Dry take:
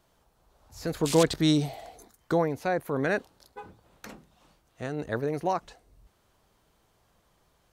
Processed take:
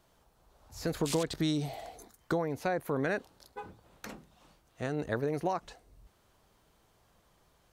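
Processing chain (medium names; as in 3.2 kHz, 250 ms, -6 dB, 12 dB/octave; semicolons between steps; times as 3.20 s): compression 6:1, threshold -27 dBFS, peak gain reduction 11 dB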